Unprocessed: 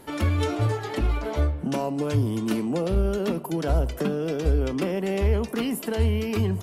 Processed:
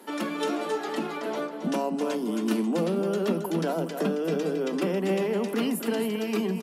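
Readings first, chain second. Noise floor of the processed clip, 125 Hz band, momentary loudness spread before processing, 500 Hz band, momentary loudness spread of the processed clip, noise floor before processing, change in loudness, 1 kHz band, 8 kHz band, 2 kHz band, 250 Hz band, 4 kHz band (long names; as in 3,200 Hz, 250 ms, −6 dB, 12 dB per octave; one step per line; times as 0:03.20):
−35 dBFS, −12.0 dB, 3 LU, 0.0 dB, 5 LU, −36 dBFS, −2.5 dB, +0.5 dB, −0.5 dB, −0.5 dB, 0.0 dB, −0.5 dB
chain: Chebyshev high-pass filter 160 Hz, order 10
notch filter 2,200 Hz, Q 23
on a send: single-tap delay 271 ms −8 dB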